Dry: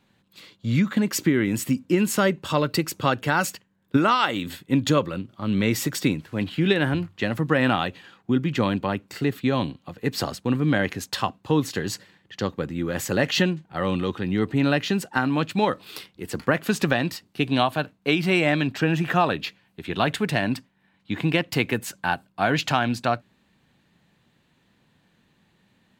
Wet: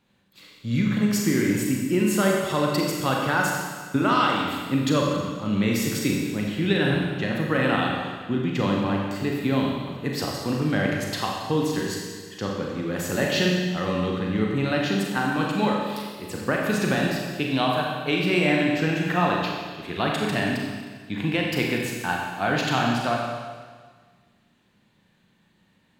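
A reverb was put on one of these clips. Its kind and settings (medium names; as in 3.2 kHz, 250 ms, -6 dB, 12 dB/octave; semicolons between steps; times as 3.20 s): Schroeder reverb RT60 1.6 s, combs from 30 ms, DRR -1.5 dB; trim -4 dB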